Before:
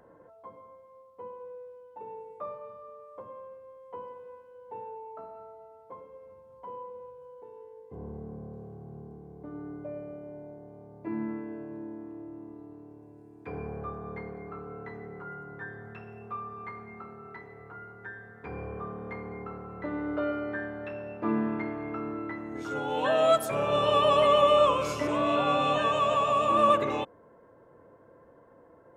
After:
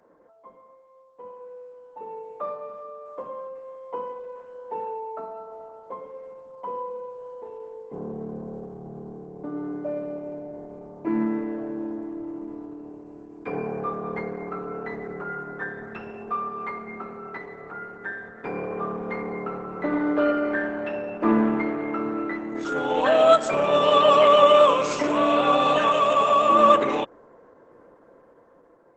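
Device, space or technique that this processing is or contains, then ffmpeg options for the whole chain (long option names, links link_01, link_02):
video call: -af "highpass=frequency=170:width=0.5412,highpass=frequency=170:width=1.3066,dynaudnorm=framelen=870:gausssize=5:maxgain=11dB,volume=-1.5dB" -ar 48000 -c:a libopus -b:a 12k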